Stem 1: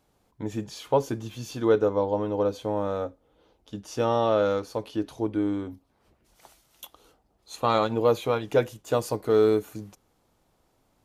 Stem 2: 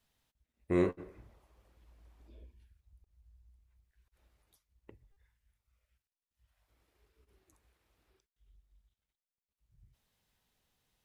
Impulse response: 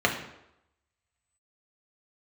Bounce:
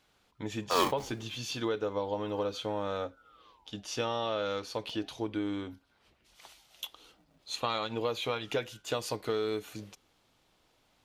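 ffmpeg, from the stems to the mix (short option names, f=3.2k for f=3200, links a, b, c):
-filter_complex "[0:a]equalizer=f=3.2k:w=0.58:g=13.5,acompressor=threshold=-22dB:ratio=6,volume=-6dB[a];[1:a]acrusher=samples=21:mix=1:aa=0.000001,acontrast=39,aeval=exprs='val(0)*sin(2*PI*850*n/s+850*0.75/0.34*sin(2*PI*0.34*n/s))':c=same,volume=-2dB[b];[a][b]amix=inputs=2:normalize=0"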